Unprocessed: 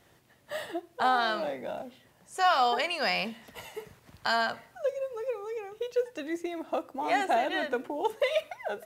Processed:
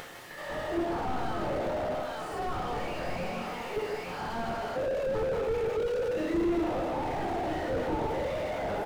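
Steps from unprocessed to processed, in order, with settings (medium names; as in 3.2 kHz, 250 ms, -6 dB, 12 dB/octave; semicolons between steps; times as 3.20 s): reverse spectral sustain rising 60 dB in 0.38 s; high-pass 610 Hz 6 dB/octave; in parallel at 0 dB: upward compressor, threshold -29 dBFS; on the sum: waveshaping leveller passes 2; level held to a coarse grid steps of 12 dB; on a send: multi-tap echo 155/346/454/868 ms -7.5/-20/-18/-13.5 dB; on the sum: simulated room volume 690 m³, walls furnished, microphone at 4.2 m; slew-rate limiter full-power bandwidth 39 Hz; trim -5.5 dB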